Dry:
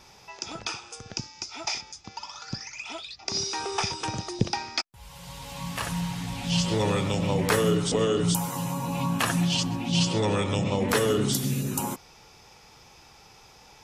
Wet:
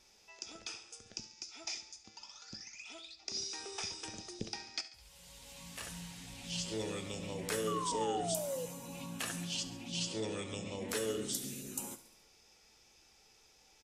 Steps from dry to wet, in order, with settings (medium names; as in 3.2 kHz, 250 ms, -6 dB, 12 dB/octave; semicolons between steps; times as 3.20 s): graphic EQ 125/1000/8000 Hz -12/-9/+5 dB; painted sound fall, 7.67–8.66 s, 480–1200 Hz -27 dBFS; feedback comb 110 Hz, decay 0.49 s, harmonics all, mix 60%; on a send: feedback delay 70 ms, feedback 59%, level -17 dB; on the sum: trim -5.5 dB